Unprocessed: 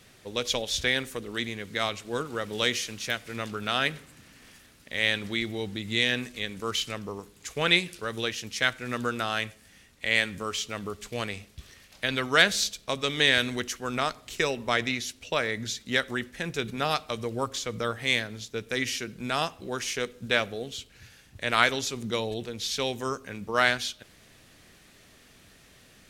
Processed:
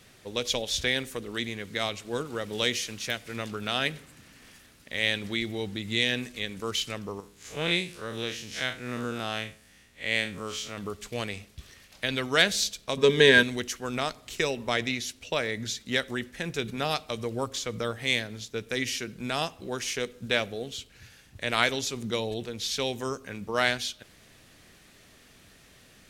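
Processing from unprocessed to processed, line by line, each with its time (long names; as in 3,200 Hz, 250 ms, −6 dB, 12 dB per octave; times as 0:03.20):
0:07.20–0:10.78: spectrum smeared in time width 90 ms
0:12.97–0:13.43: hollow resonant body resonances 210/410/970/1,600 Hz, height 15 dB
whole clip: dynamic equaliser 1,300 Hz, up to −5 dB, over −38 dBFS, Q 1.4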